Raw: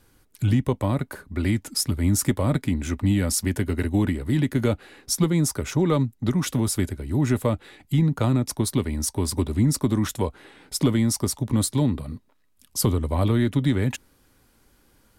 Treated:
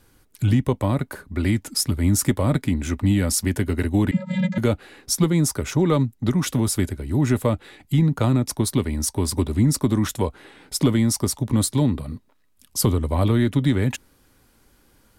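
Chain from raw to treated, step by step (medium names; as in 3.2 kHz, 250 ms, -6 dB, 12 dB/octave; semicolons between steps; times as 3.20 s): 4.11–4.58 s: vocoder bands 32, square 185 Hz; trim +2 dB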